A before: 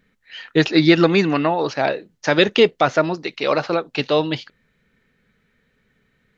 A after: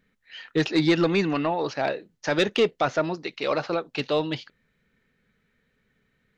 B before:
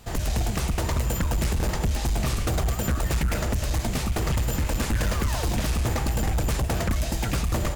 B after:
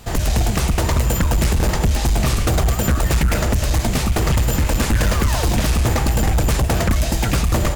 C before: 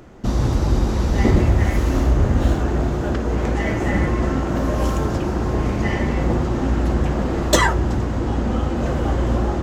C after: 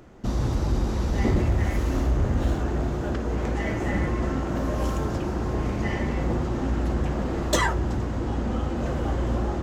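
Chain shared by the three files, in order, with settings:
soft clip -6 dBFS; normalise peaks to -12 dBFS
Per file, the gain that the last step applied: -5.5, +7.5, -5.5 dB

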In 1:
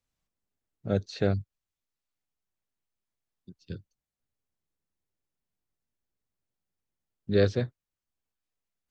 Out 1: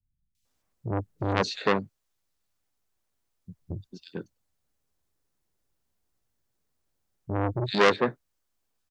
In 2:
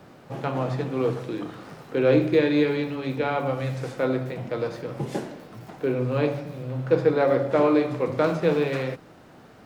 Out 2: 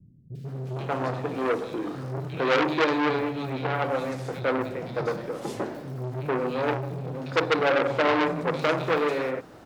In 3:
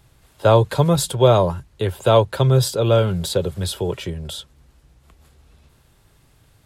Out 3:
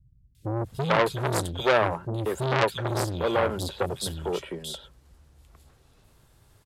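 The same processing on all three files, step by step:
three bands offset in time lows, highs, mids 0.35/0.45 s, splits 190/2500 Hz; core saturation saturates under 2200 Hz; match loudness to -27 LUFS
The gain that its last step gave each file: +9.5, +2.5, -2.5 dB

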